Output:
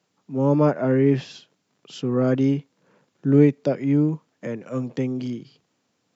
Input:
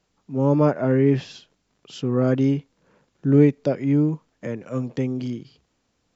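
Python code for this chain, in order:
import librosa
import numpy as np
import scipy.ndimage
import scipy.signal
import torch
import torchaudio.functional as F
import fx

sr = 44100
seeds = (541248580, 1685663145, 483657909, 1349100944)

y = scipy.signal.sosfilt(scipy.signal.butter(4, 120.0, 'highpass', fs=sr, output='sos'), x)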